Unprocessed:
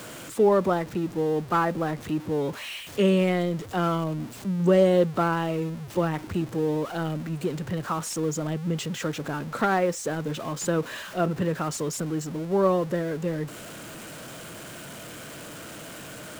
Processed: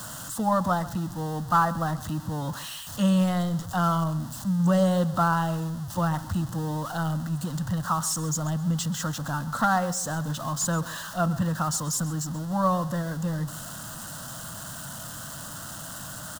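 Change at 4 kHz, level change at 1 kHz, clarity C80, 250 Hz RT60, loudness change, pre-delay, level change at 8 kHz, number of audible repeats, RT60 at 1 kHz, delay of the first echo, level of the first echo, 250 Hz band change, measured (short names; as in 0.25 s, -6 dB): +0.5 dB, +2.5 dB, none, none, -1.0 dB, none, +6.0 dB, 2, none, 0.133 s, -17.0 dB, 0.0 dB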